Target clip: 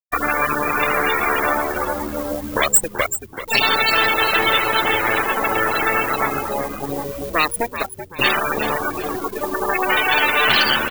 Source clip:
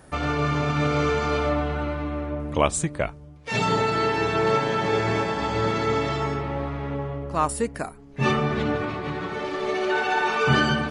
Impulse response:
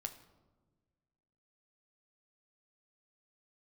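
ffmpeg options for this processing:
-filter_complex "[0:a]bandreject=f=50:t=h:w=6,bandreject=f=100:t=h:w=6,bandreject=f=150:t=h:w=6,aeval=exprs='0.501*(cos(1*acos(clip(val(0)/0.501,-1,1)))-cos(1*PI/2))+0.251*(cos(2*acos(clip(val(0)/0.501,-1,1)))-cos(2*PI/2))+0.0316*(cos(4*acos(clip(val(0)/0.501,-1,1)))-cos(4*PI/2))+0.02*(cos(6*acos(clip(val(0)/0.501,-1,1)))-cos(6*PI/2))+0.178*(cos(8*acos(clip(val(0)/0.501,-1,1)))-cos(8*PI/2))':c=same,equalizer=f=170:w=3.5:g=-8.5,afftfilt=real='re*gte(hypot(re,im),0.141)':imag='im*gte(hypot(re,im),0.141)':win_size=1024:overlap=0.75,acrossover=split=1300|2700[s0][s1][s2];[s0]acompressor=threshold=0.0447:ratio=4[s3];[s1]acompressor=threshold=0.0251:ratio=4[s4];[s2]acompressor=threshold=0.0355:ratio=4[s5];[s3][s4][s5]amix=inputs=3:normalize=0,asplit=2[s6][s7];[s7]acrusher=bits=6:mix=0:aa=0.000001,volume=0.355[s8];[s6][s8]amix=inputs=2:normalize=0,aemphasis=mode=production:type=bsi,aeval=exprs='1.33*sin(PI/2*3.16*val(0)/1.33)':c=same,asplit=2[s9][s10];[s10]asplit=4[s11][s12][s13][s14];[s11]adelay=382,afreqshift=-90,volume=0.299[s15];[s12]adelay=764,afreqshift=-180,volume=0.114[s16];[s13]adelay=1146,afreqshift=-270,volume=0.0432[s17];[s14]adelay=1528,afreqshift=-360,volume=0.0164[s18];[s15][s16][s17][s18]amix=inputs=4:normalize=0[s19];[s9][s19]amix=inputs=2:normalize=0,volume=0.473"

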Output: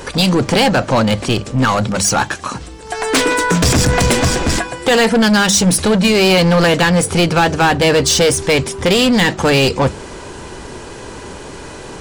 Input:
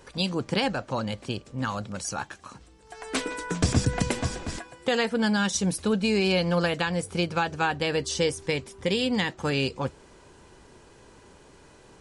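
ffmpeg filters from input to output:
-af "apsyclip=14.1,acontrast=75,bandreject=f=50:t=h:w=6,bandreject=f=100:t=h:w=6,bandreject=f=150:t=h:w=6,bandreject=f=200:t=h:w=6,volume=0.398"

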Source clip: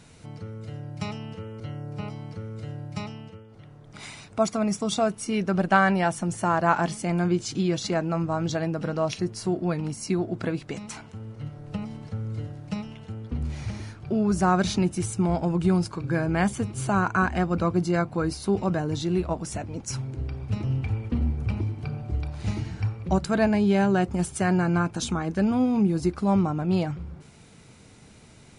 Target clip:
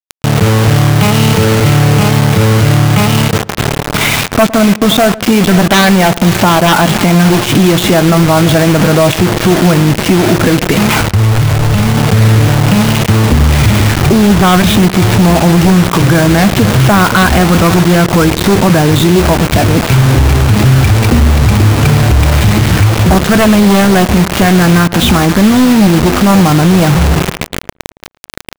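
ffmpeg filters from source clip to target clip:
-filter_complex "[0:a]aresample=8000,aresample=44100,aeval=exprs='0.133*(abs(mod(val(0)/0.133+3,4)-2)-1)':c=same,acompressor=threshold=0.0251:ratio=8,bandreject=f=353:t=h:w=4,bandreject=f=706:t=h:w=4,bandreject=f=1059:t=h:w=4,asplit=2[s0][s1];[s1]aecho=0:1:526:0.158[s2];[s0][s2]amix=inputs=2:normalize=0,acrusher=bits=6:mix=0:aa=0.000001,asplit=2[s3][s4];[s4]adelay=110,lowpass=f=1500:p=1,volume=0.0794,asplit=2[s5][s6];[s6]adelay=110,lowpass=f=1500:p=1,volume=0.24[s7];[s5][s7]amix=inputs=2:normalize=0[s8];[s3][s8]amix=inputs=2:normalize=0,asoftclip=type=tanh:threshold=0.0316,asettb=1/sr,asplit=3[s9][s10][s11];[s9]atrim=end=11.004[s12];[s10]atrim=start=11:end=11.94,asetpts=PTS-STARTPTS,afade=t=in:d=0.004:c=qsin,afade=t=out:st=0.936:d=0.004:c=qsin,lowshelf=f=120:t=q:w=1.5:g=8[s13];[s11]atrim=start=11.936[s14];[s12][s13]acrossfade=d=0.004:c1=hsin:c2=qsin[s15];[s15][s14]acrossfade=d=0.004:c1=qsin:c2=hsin,alimiter=level_in=44.7:limit=0.891:release=50:level=0:latency=1,volume=0.891"

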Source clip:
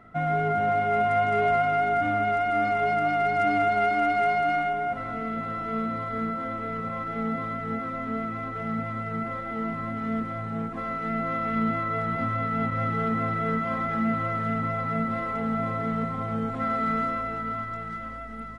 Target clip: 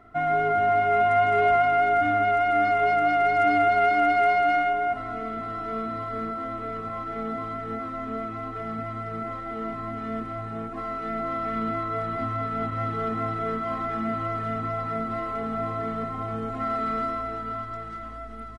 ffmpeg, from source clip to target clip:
-af "aecho=1:1:2.8:0.67,volume=0.841"

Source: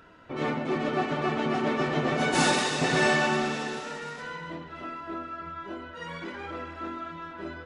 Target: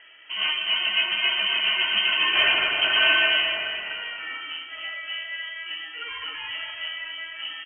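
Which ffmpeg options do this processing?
-filter_complex "[0:a]lowpass=f=2800:t=q:w=0.5098,lowpass=f=2800:t=q:w=0.6013,lowpass=f=2800:t=q:w=0.9,lowpass=f=2800:t=q:w=2.563,afreqshift=-3300,asplit=2[s0][s1];[s1]adelay=244.9,volume=0.398,highshelf=f=4000:g=-5.51[s2];[s0][s2]amix=inputs=2:normalize=0,volume=1.5"

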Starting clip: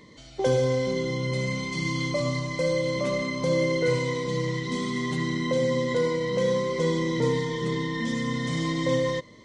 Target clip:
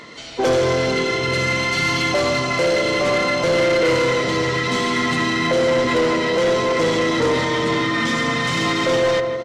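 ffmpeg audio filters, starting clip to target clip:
-filter_complex "[0:a]asplit=4[s0][s1][s2][s3];[s1]asetrate=29433,aresample=44100,atempo=1.49831,volume=0.447[s4];[s2]asetrate=37084,aresample=44100,atempo=1.18921,volume=0.2[s5];[s3]asetrate=55563,aresample=44100,atempo=0.793701,volume=0.178[s6];[s0][s4][s5][s6]amix=inputs=4:normalize=0,asplit=2[s7][s8];[s8]adelay=163,lowpass=f=1500:p=1,volume=0.398,asplit=2[s9][s10];[s10]adelay=163,lowpass=f=1500:p=1,volume=0.53,asplit=2[s11][s12];[s12]adelay=163,lowpass=f=1500:p=1,volume=0.53,asplit=2[s13][s14];[s14]adelay=163,lowpass=f=1500:p=1,volume=0.53,asplit=2[s15][s16];[s16]adelay=163,lowpass=f=1500:p=1,volume=0.53,asplit=2[s17][s18];[s18]adelay=163,lowpass=f=1500:p=1,volume=0.53[s19];[s7][s9][s11][s13][s15][s17][s19]amix=inputs=7:normalize=0,asplit=2[s20][s21];[s21]highpass=f=720:p=1,volume=11.2,asoftclip=type=tanh:threshold=0.335[s22];[s20][s22]amix=inputs=2:normalize=0,lowpass=f=5400:p=1,volume=0.501"

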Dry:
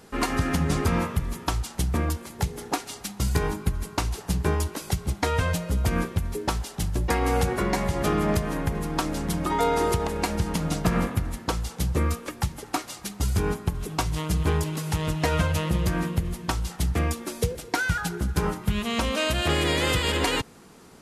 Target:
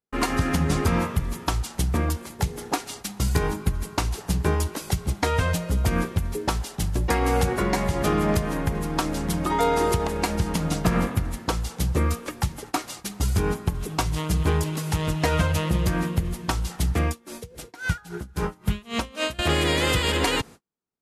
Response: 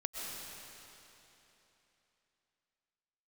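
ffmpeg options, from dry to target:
-filter_complex "[0:a]agate=range=0.00631:threshold=0.00794:ratio=16:detection=peak,asettb=1/sr,asplit=3[s0][s1][s2];[s0]atrim=end=17.084[s3];[s1]atrim=start=17.08:end=19.39,asetpts=PTS-STARTPTS,afade=t=in:d=0.004:c=qsin,afade=t=out:st=2.306:d=0.004:c=qsin,aeval=exprs='val(0)*pow(10,-22*(0.5-0.5*cos(2*PI*3.7*n/s))/20)':c=same[s4];[s2]atrim=start=19.386[s5];[s3][s4]acrossfade=d=0.004:c1=hsin:c2=qsin[s6];[s6][s5]acrossfade=d=0.004:c1=qsin:c2=hsin,volume=1.19"

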